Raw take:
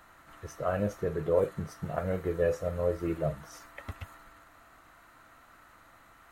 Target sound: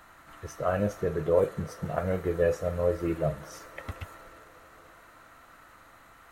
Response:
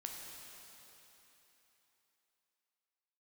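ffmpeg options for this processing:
-filter_complex "[0:a]asplit=2[link_01][link_02];[1:a]atrim=start_sample=2205,asetrate=23814,aresample=44100,lowshelf=frequency=400:gain=-11.5[link_03];[link_02][link_03]afir=irnorm=-1:irlink=0,volume=-15.5dB[link_04];[link_01][link_04]amix=inputs=2:normalize=0,volume=2dB"

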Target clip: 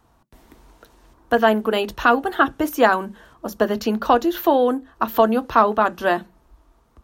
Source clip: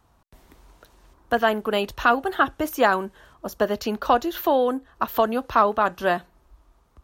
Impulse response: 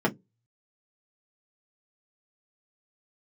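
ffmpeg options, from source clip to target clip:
-filter_complex "[0:a]asplit=2[link_01][link_02];[link_02]lowshelf=frequency=270:gain=6.5[link_03];[1:a]atrim=start_sample=2205,lowshelf=frequency=150:gain=-5.5[link_04];[link_03][link_04]afir=irnorm=-1:irlink=0,volume=-24dB[link_05];[link_01][link_05]amix=inputs=2:normalize=0,volume=1.5dB"

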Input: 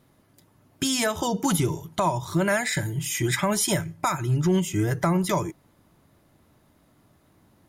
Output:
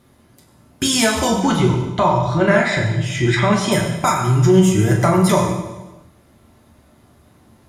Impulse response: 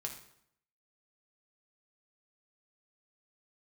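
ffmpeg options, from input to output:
-filter_complex "[0:a]asettb=1/sr,asplit=3[link_01][link_02][link_03];[link_01]atrim=end=1.424[link_04];[link_02]atrim=start=1.42:end=3.72,asetpts=PTS-STARTPTS,afade=type=in:duration=0.004:curve=qsin,afade=type=out:start_time=2.296:duration=0.004:curve=qsin,lowpass=3700[link_05];[link_03]atrim=start=3.716[link_06];[link_04][link_05]acrossfade=duration=0.004:curve1=hsin:curve2=qsin[link_07];[link_07][link_06]acrossfade=duration=0.004:curve1=qsin:curve2=hsin[link_08];[1:a]atrim=start_sample=2205,afade=type=out:start_time=0.42:duration=0.01,atrim=end_sample=18963,asetrate=24696,aresample=44100[link_09];[link_08][link_09]afir=irnorm=-1:irlink=0,volume=6dB"

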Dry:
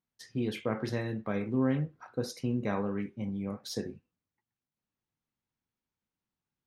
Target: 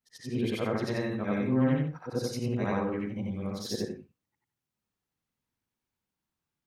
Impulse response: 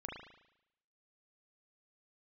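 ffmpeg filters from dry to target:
-af "afftfilt=real='re':imag='-im':win_size=8192:overlap=0.75,volume=7.5dB"

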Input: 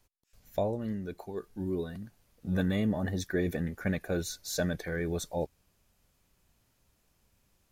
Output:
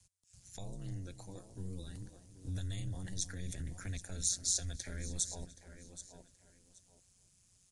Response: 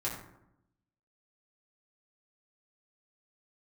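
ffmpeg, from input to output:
-filter_complex "[0:a]aresample=22050,aresample=44100,asplit=2[link_01][link_02];[link_02]aecho=0:1:774|1548:0.141|0.0311[link_03];[link_01][link_03]amix=inputs=2:normalize=0,aeval=exprs='val(0)*sin(2*PI*92*n/s)':channel_layout=same,acrossover=split=150|3000[link_04][link_05][link_06];[link_05]acompressor=threshold=-42dB:ratio=6[link_07];[link_04][link_07][link_06]amix=inputs=3:normalize=0,alimiter=level_in=7.5dB:limit=-24dB:level=0:latency=1:release=46,volume=-7.5dB,firequalizer=gain_entry='entry(110,0);entry(320,-9);entry(6800,13)':delay=0.05:min_phase=1,asplit=2[link_08][link_09];[link_09]adelay=295,lowpass=frequency=1500:poles=1,volume=-14dB,asplit=2[link_10][link_11];[link_11]adelay=295,lowpass=frequency=1500:poles=1,volume=0.35,asplit=2[link_12][link_13];[link_13]adelay=295,lowpass=frequency=1500:poles=1,volume=0.35[link_14];[link_10][link_12][link_14]amix=inputs=3:normalize=0[link_15];[link_08][link_15]amix=inputs=2:normalize=0,volume=1dB"

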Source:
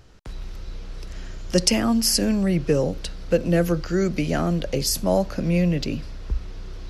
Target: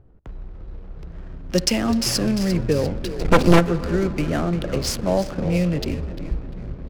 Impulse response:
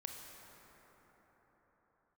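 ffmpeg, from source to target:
-filter_complex "[0:a]asplit=8[link_01][link_02][link_03][link_04][link_05][link_06][link_07][link_08];[link_02]adelay=348,afreqshift=-99,volume=-10dB[link_09];[link_03]adelay=696,afreqshift=-198,volume=-14.6dB[link_10];[link_04]adelay=1044,afreqshift=-297,volume=-19.2dB[link_11];[link_05]adelay=1392,afreqshift=-396,volume=-23.7dB[link_12];[link_06]adelay=1740,afreqshift=-495,volume=-28.3dB[link_13];[link_07]adelay=2088,afreqshift=-594,volume=-32.9dB[link_14];[link_08]adelay=2436,afreqshift=-693,volume=-37.5dB[link_15];[link_01][link_09][link_10][link_11][link_12][link_13][link_14][link_15]amix=inputs=8:normalize=0,asplit=3[link_16][link_17][link_18];[link_16]afade=type=out:start_time=3.19:duration=0.02[link_19];[link_17]aeval=exprs='0.501*(cos(1*acos(clip(val(0)/0.501,-1,1)))-cos(1*PI/2))+0.126*(cos(5*acos(clip(val(0)/0.501,-1,1)))-cos(5*PI/2))+0.251*(cos(6*acos(clip(val(0)/0.501,-1,1)))-cos(6*PI/2))':channel_layout=same,afade=type=in:start_time=3.19:duration=0.02,afade=type=out:start_time=3.59:duration=0.02[link_20];[link_18]afade=type=in:start_time=3.59:duration=0.02[link_21];[link_19][link_20][link_21]amix=inputs=3:normalize=0,asplit=2[link_22][link_23];[1:a]atrim=start_sample=2205[link_24];[link_23][link_24]afir=irnorm=-1:irlink=0,volume=-6.5dB[link_25];[link_22][link_25]amix=inputs=2:normalize=0,adynamicsmooth=sensitivity=6.5:basefreq=520,volume=-2.5dB"

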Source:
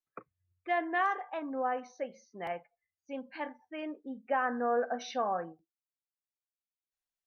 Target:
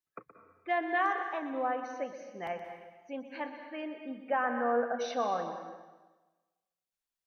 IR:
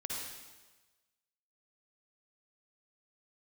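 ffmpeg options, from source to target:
-filter_complex "[0:a]asplit=2[link_01][link_02];[1:a]atrim=start_sample=2205,adelay=122[link_03];[link_02][link_03]afir=irnorm=-1:irlink=0,volume=-8dB[link_04];[link_01][link_04]amix=inputs=2:normalize=0"

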